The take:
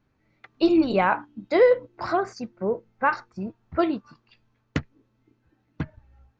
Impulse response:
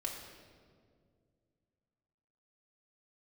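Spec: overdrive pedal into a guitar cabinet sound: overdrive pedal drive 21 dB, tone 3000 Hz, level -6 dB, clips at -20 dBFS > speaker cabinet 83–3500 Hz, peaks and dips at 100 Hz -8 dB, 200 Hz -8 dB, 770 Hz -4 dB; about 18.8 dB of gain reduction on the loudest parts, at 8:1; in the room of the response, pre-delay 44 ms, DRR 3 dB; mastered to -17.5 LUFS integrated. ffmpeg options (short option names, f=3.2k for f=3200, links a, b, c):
-filter_complex "[0:a]acompressor=threshold=-34dB:ratio=8,asplit=2[a][b];[1:a]atrim=start_sample=2205,adelay=44[c];[b][c]afir=irnorm=-1:irlink=0,volume=-4dB[d];[a][d]amix=inputs=2:normalize=0,asplit=2[e][f];[f]highpass=f=720:p=1,volume=21dB,asoftclip=type=tanh:threshold=-20dB[g];[e][g]amix=inputs=2:normalize=0,lowpass=f=3k:p=1,volume=-6dB,highpass=83,equalizer=f=100:t=q:w=4:g=-8,equalizer=f=200:t=q:w=4:g=-8,equalizer=f=770:t=q:w=4:g=-4,lowpass=f=3.5k:w=0.5412,lowpass=f=3.5k:w=1.3066,volume=15.5dB"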